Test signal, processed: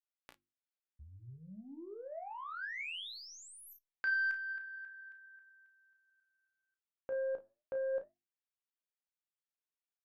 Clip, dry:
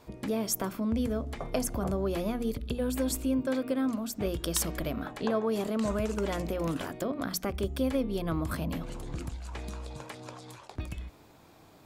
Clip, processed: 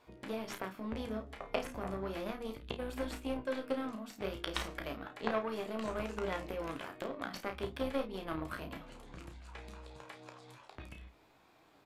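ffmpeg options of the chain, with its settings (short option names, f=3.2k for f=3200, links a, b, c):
-filter_complex "[0:a]tiltshelf=f=1.4k:g=-4,asplit=2[a][b];[b]acompressor=threshold=-46dB:ratio=6,volume=-3dB[c];[a][c]amix=inputs=2:normalize=0,aeval=exprs='0.299*(cos(1*acos(clip(val(0)/0.299,-1,1)))-cos(1*PI/2))+0.00188*(cos(4*acos(clip(val(0)/0.299,-1,1)))-cos(4*PI/2))+0.0119*(cos(5*acos(clip(val(0)/0.299,-1,1)))-cos(5*PI/2))+0.0422*(cos(7*acos(clip(val(0)/0.299,-1,1)))-cos(7*PI/2))':c=same,bass=f=250:g=-4,treble=f=4k:g=-12,flanger=delay=2.7:depth=7.3:regen=84:speed=0.35:shape=sinusoidal,aecho=1:1:15|32|52:0.282|0.422|0.168,acrossover=split=3700[d][e];[e]acompressor=threshold=-59dB:ratio=4:attack=1:release=60[f];[d][f]amix=inputs=2:normalize=0,bandreject=f=50:t=h:w=6,bandreject=f=100:t=h:w=6,bandreject=f=150:t=h:w=6,bandreject=f=200:t=h:w=6,bandreject=f=250:t=h:w=6,bandreject=f=300:t=h:w=6,bandreject=f=350:t=h:w=6,aresample=32000,aresample=44100,volume=7.5dB"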